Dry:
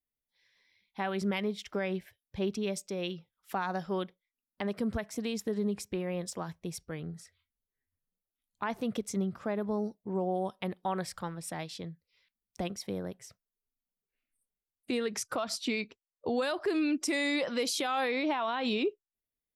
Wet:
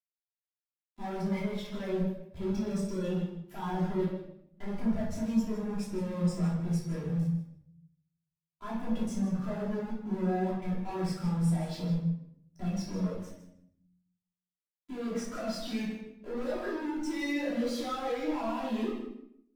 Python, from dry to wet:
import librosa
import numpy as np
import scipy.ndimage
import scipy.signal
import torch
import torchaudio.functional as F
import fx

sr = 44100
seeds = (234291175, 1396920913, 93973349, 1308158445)

p1 = fx.level_steps(x, sr, step_db=22)
p2 = x + (p1 * 10.0 ** (1.5 / 20.0))
p3 = np.where(np.abs(p2) >= 10.0 ** (-45.0 / 20.0), p2, 0.0)
p4 = fx.tube_stage(p3, sr, drive_db=47.0, bias=0.35)
p5 = p4 + fx.echo_feedback(p4, sr, ms=156, feedback_pct=24, wet_db=-9, dry=0)
p6 = fx.room_shoebox(p5, sr, seeds[0], volume_m3=400.0, walls='mixed', distance_m=3.0)
p7 = fx.spectral_expand(p6, sr, expansion=1.5)
y = p7 * 10.0 ** (8.0 / 20.0)